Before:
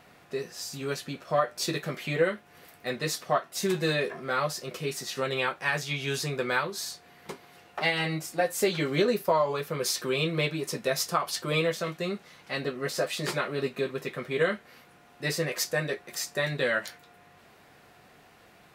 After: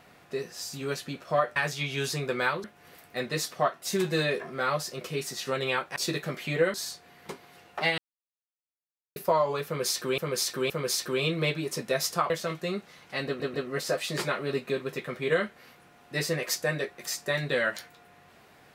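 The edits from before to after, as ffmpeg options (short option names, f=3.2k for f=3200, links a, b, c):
-filter_complex "[0:a]asplit=12[a][b][c][d][e][f][g][h][i][j][k][l];[a]atrim=end=1.562[m];[b]atrim=start=5.658:end=6.742[n];[c]atrim=start=2.338:end=5.662[o];[d]atrim=start=1.558:end=2.342[p];[e]atrim=start=6.738:end=7.98,asetpts=PTS-STARTPTS,afade=t=out:st=1.238:d=0.004:c=hsin[q];[f]atrim=start=7.98:end=9.16,asetpts=PTS-STARTPTS,volume=0[r];[g]atrim=start=9.16:end=10.182,asetpts=PTS-STARTPTS,afade=t=in:d=0.004:c=hsin[s];[h]atrim=start=9.658:end=10.182[t];[i]atrim=start=9.658:end=11.262[u];[j]atrim=start=11.668:end=12.772[v];[k]atrim=start=12.628:end=12.772[w];[l]atrim=start=12.628[x];[m][n]acrossfade=d=0.004:c1=hsin:c2=hsin[y];[y][o]acrossfade=d=0.004:c1=hsin:c2=hsin[z];[z][p]acrossfade=d=0.004:c1=hsin:c2=hsin[aa];[q][r][s]concat=n=3:v=0:a=1[ab];[aa][ab]acrossfade=d=0.004:c1=hsin:c2=hsin[ac];[ac][t]acrossfade=d=0.004:c1=hsin:c2=hsin[ad];[ad][u]acrossfade=d=0.004:c1=hsin:c2=hsin[ae];[ae][v]acrossfade=d=0.004:c1=hsin:c2=hsin[af];[af][w]acrossfade=d=0.004:c1=hsin:c2=hsin[ag];[ag][x]acrossfade=d=0.004:c1=hsin:c2=hsin"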